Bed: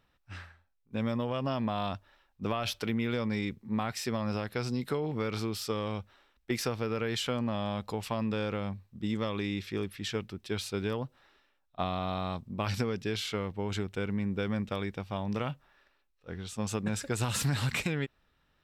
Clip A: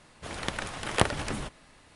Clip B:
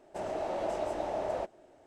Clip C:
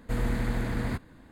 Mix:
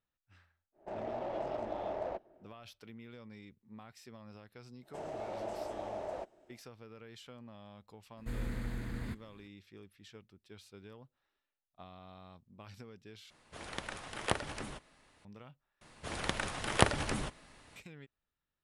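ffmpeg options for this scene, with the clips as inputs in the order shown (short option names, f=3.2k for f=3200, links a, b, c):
-filter_complex "[2:a]asplit=2[a][b];[1:a]asplit=2[c][d];[0:a]volume=-20dB[e];[a]adynamicsmooth=sensitivity=7:basefreq=1.7k[f];[3:a]equalizer=f=720:t=o:w=1.4:g=-6.5[g];[c]bass=f=250:g=-3,treble=f=4k:g=-1[h];[e]asplit=3[i][j][k];[i]atrim=end=13.304[l];[h]atrim=end=1.95,asetpts=PTS-STARTPTS,volume=-8dB[m];[j]atrim=start=15.246:end=15.814[n];[d]atrim=end=1.95,asetpts=PTS-STARTPTS,volume=-2dB[o];[k]atrim=start=17.756[p];[f]atrim=end=1.86,asetpts=PTS-STARTPTS,volume=-4.5dB,afade=t=in:d=0.1,afade=t=out:st=1.76:d=0.1,adelay=720[q];[b]atrim=end=1.86,asetpts=PTS-STARTPTS,volume=-7dB,afade=t=in:d=0.1,afade=t=out:st=1.76:d=0.1,adelay=4790[r];[g]atrim=end=1.31,asetpts=PTS-STARTPTS,volume=-9.5dB,afade=t=in:d=0.004:c=hsin,afade=t=out:st=1.306:d=0.004:c=hsin,adelay=8170[s];[l][m]acrossfade=d=0.004:c1=hsin:c2=hsin[t];[t][n]acrossfade=d=0.004:c1=hsin:c2=hsin[u];[u][o]acrossfade=d=0.004:c1=hsin:c2=hsin[v];[v][p]acrossfade=d=0.004:c1=hsin:c2=hsin[w];[w][q][r][s]amix=inputs=4:normalize=0"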